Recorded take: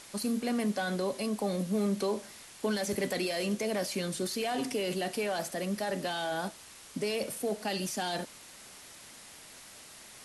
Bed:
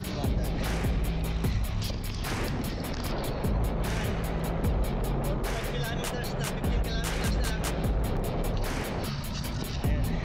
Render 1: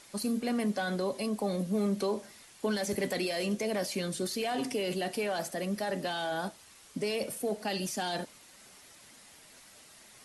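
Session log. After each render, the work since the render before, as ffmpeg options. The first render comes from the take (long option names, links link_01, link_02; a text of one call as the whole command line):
ffmpeg -i in.wav -af "afftdn=noise_reduction=6:noise_floor=-51" out.wav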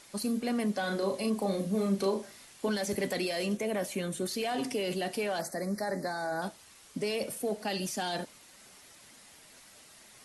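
ffmpeg -i in.wav -filter_complex "[0:a]asettb=1/sr,asplit=3[link_01][link_02][link_03];[link_01]atrim=end=0.804[link_04];[link_02]atrim=start=0.8:end=2.69,asetpts=PTS-STARTPTS,afade=type=in:duration=0.004:curve=qsin,afade=type=out:start_time=1.886:duration=0.004:curve=qsin,asplit=2[link_05][link_06];[link_06]adelay=36,volume=-5dB[link_07];[link_05][link_07]amix=inputs=2:normalize=0,atrim=end_sample=83349[link_08];[link_03]atrim=start=2.686[link_09];[link_04][link_08]acrossfade=duration=0.004:curve1=hsin:curve2=qsin[link_10];[link_10][link_09]acrossfade=duration=0.004:curve1=qsin:curve2=hsin,asettb=1/sr,asplit=3[link_11][link_12][link_13];[link_11]atrim=end=3.574[link_14];[link_12]atrim=start=3.57:end=4.28,asetpts=PTS-STARTPTS,afade=type=in:duration=0.004:curve=qsin,afade=type=out:start_time=0.706:duration=0.004:curve=qsin,equalizer=frequency=4800:width=3:gain=-13.5[link_15];[link_13]atrim=start=4.276[link_16];[link_14][link_15]acrossfade=duration=0.004:curve1=hsin:curve2=qsin[link_17];[link_17][link_16]acrossfade=duration=0.004:curve1=qsin:curve2=hsin,asettb=1/sr,asplit=3[link_18][link_19][link_20];[link_18]atrim=end=5.414[link_21];[link_19]atrim=start=5.41:end=6.42,asetpts=PTS-STARTPTS,afade=type=in:duration=0.004:curve=qsin,afade=type=out:start_time=1.006:duration=0.004:curve=qsin,asuperstop=centerf=3000:order=8:qfactor=1.6[link_22];[link_20]atrim=start=6.416[link_23];[link_21][link_22]acrossfade=duration=0.004:curve1=hsin:curve2=qsin[link_24];[link_24][link_23]acrossfade=duration=0.004:curve1=qsin:curve2=hsin" out.wav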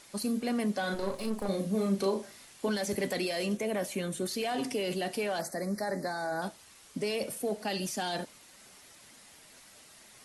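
ffmpeg -i in.wav -filter_complex "[0:a]asettb=1/sr,asplit=3[link_01][link_02][link_03];[link_01]atrim=end=0.944[link_04];[link_02]atrim=start=0.94:end=1.49,asetpts=PTS-STARTPTS,afade=type=in:duration=0.004:curve=qsin,afade=type=out:start_time=0.546:duration=0.004:curve=qsin,aeval=exprs='if(lt(val(0),0),0.251*val(0),val(0))':channel_layout=same[link_05];[link_03]atrim=start=1.486[link_06];[link_04][link_05]acrossfade=duration=0.004:curve1=hsin:curve2=qsin[link_07];[link_07][link_06]acrossfade=duration=0.004:curve1=qsin:curve2=hsin" out.wav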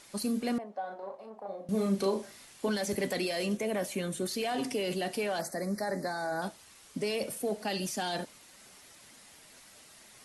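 ffmpeg -i in.wav -filter_complex "[0:a]asettb=1/sr,asplit=3[link_01][link_02][link_03];[link_01]atrim=end=0.584[link_04];[link_02]atrim=start=0.58:end=1.69,asetpts=PTS-STARTPTS,afade=type=in:duration=0.004:curve=qsin,afade=type=out:start_time=1.106:duration=0.004:curve=qsin,bandpass=frequency=740:width_type=q:width=2.9[link_05];[link_03]atrim=start=1.686[link_06];[link_04][link_05]acrossfade=duration=0.004:curve1=hsin:curve2=qsin[link_07];[link_07][link_06]acrossfade=duration=0.004:curve1=qsin:curve2=hsin" out.wav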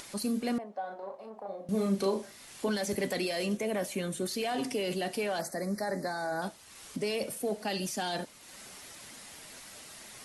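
ffmpeg -i in.wav -af "acompressor=mode=upward:threshold=-40dB:ratio=2.5" out.wav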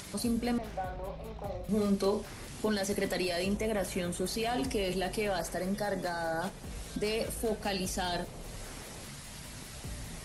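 ffmpeg -i in.wav -i bed.wav -filter_complex "[1:a]volume=-15.5dB[link_01];[0:a][link_01]amix=inputs=2:normalize=0" out.wav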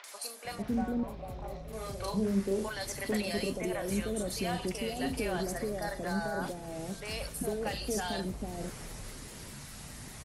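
ffmpeg -i in.wav -filter_complex "[0:a]acrossover=split=590|3200[link_01][link_02][link_03];[link_03]adelay=40[link_04];[link_01]adelay=450[link_05];[link_05][link_02][link_04]amix=inputs=3:normalize=0" out.wav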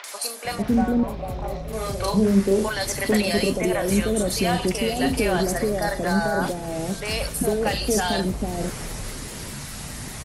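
ffmpeg -i in.wav -af "volume=11.5dB" out.wav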